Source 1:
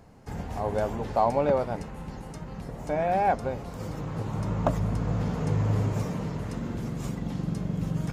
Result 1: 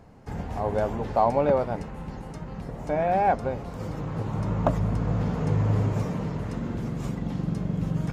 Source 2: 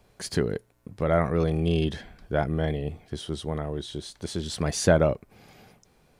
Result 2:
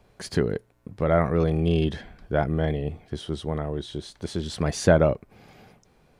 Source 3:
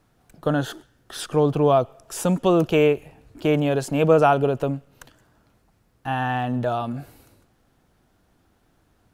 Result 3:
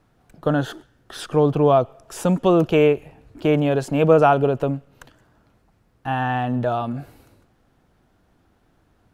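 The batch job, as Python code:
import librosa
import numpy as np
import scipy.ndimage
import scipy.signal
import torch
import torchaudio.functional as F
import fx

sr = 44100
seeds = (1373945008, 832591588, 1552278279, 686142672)

y = fx.high_shelf(x, sr, hz=4500.0, db=-7.5)
y = y * 10.0 ** (2.0 / 20.0)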